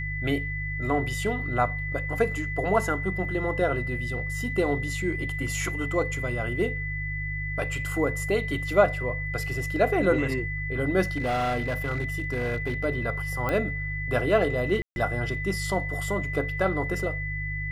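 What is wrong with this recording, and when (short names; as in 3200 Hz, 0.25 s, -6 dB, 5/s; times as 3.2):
hum 50 Hz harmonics 3 -33 dBFS
tone 2000 Hz -32 dBFS
11.16–12.85 clipped -23 dBFS
13.49 pop -15 dBFS
14.82–14.96 gap 0.141 s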